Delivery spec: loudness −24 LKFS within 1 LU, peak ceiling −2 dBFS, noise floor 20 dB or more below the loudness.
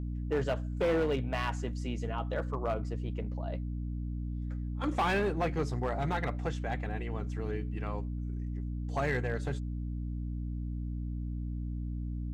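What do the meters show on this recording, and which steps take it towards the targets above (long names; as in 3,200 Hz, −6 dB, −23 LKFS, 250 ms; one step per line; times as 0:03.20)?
share of clipped samples 0.9%; peaks flattened at −24.0 dBFS; mains hum 60 Hz; hum harmonics up to 300 Hz; level of the hum −33 dBFS; integrated loudness −34.5 LKFS; sample peak −24.0 dBFS; target loudness −24.0 LKFS
→ clipped peaks rebuilt −24 dBFS
hum removal 60 Hz, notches 5
level +10.5 dB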